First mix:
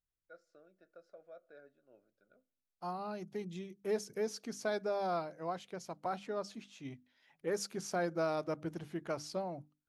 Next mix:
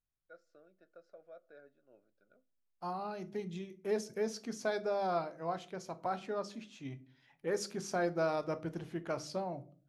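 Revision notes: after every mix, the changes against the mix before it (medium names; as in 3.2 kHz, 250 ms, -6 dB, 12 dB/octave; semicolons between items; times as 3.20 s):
second voice: send on; master: add treble shelf 9.3 kHz -7 dB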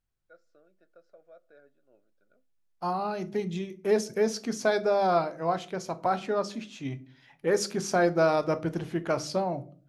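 second voice +9.5 dB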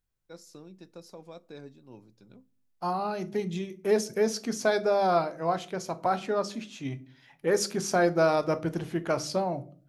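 first voice: remove two resonant band-passes 940 Hz, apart 1.2 oct; master: add treble shelf 9.3 kHz +7 dB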